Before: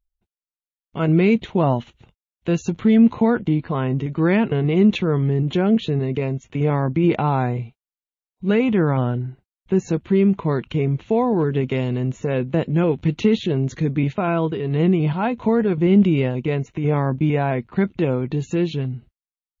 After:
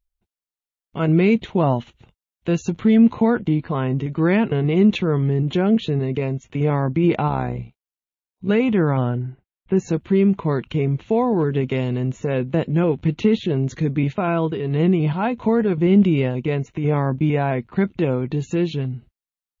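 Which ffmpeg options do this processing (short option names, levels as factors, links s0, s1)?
-filter_complex "[0:a]asplit=3[s0][s1][s2];[s0]afade=t=out:st=7.27:d=0.02[s3];[s1]tremolo=f=67:d=0.71,afade=t=in:st=7.27:d=0.02,afade=t=out:st=8.48:d=0.02[s4];[s2]afade=t=in:st=8.48:d=0.02[s5];[s3][s4][s5]amix=inputs=3:normalize=0,asettb=1/sr,asplit=3[s6][s7][s8];[s6]atrim=end=9.094[s9];[s7]atrim=start=9.09:end=9.77,asetpts=PTS-STARTPTS,afade=t=in:d=0.004:c=qsin,afade=t=out:st=0.676:d=0.004:c=qsin,lowpass=f=3100:w=0.5412,lowpass=f=3100:w=1.3066[s10];[s8]atrim=start=9.766[s11];[s9][s10]acrossfade=d=0.004:c1=hsin:c2=qsin[s12];[s12][s11]acrossfade=d=0.004:c1=qsin:c2=hsin,asettb=1/sr,asplit=3[s13][s14][s15];[s13]atrim=end=12.794[s16];[s14]atrim=start=12.79:end=13.53,asetpts=PTS-STARTPTS,afade=t=in:d=0.004:c=qsin,afade=t=out:st=0.736:d=0.004:c=qsin,highshelf=f=4300:g=-6[s17];[s15]atrim=start=13.526[s18];[s16][s17]acrossfade=d=0.004:c1=hsin:c2=qsin[s19];[s19][s18]acrossfade=d=0.004:c1=qsin:c2=hsin"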